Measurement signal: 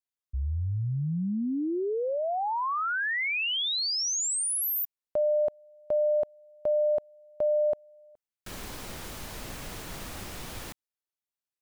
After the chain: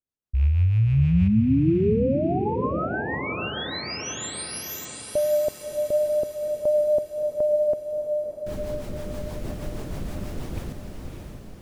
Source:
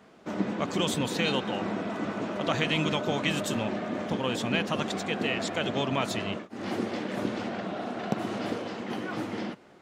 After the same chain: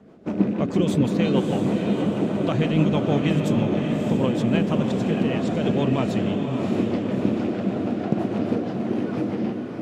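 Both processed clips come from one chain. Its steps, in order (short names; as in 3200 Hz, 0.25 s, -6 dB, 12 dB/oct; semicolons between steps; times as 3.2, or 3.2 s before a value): rattling part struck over -35 dBFS, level -30 dBFS; tilt shelf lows +8 dB, about 810 Hz; rotary speaker horn 6.3 Hz; on a send: diffused feedback echo 0.622 s, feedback 52%, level -5 dB; on the sum: gain +3.5 dB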